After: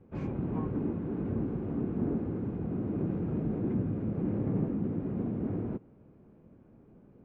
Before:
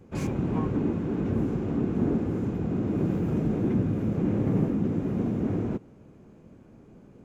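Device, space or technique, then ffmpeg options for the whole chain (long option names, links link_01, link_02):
phone in a pocket: -af "lowpass=3500,highshelf=frequency=2500:gain=-11,volume=-5.5dB"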